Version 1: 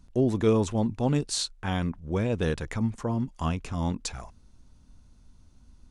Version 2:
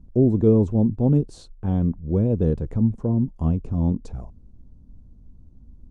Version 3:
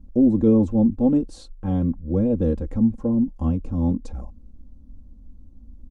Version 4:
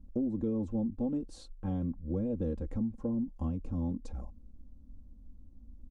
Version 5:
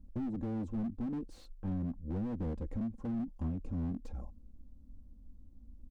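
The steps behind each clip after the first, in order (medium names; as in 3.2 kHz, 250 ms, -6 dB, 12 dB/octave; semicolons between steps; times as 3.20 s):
FFT filter 190 Hz 0 dB, 480 Hz -4 dB, 1.9 kHz -27 dB; trim +8 dB
comb 3.7 ms, depth 85%; trim -1 dB
compression 6:1, threshold -22 dBFS, peak gain reduction 9.5 dB; trim -7.5 dB
slew-rate limiter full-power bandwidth 6.4 Hz; trim -2 dB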